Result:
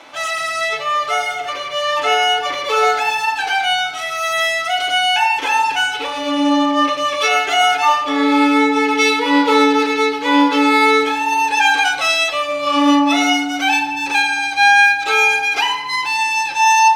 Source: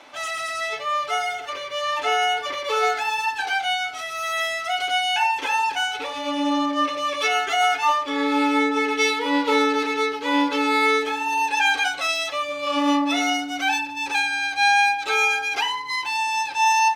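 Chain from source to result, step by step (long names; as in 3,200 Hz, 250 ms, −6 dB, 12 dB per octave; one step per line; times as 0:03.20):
rectangular room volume 710 cubic metres, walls mixed, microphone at 0.67 metres
level +5.5 dB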